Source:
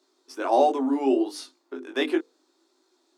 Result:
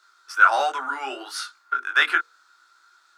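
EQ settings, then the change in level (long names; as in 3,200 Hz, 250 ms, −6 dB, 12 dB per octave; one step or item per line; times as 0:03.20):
high-pass with resonance 1,400 Hz, resonance Q 12
+6.0 dB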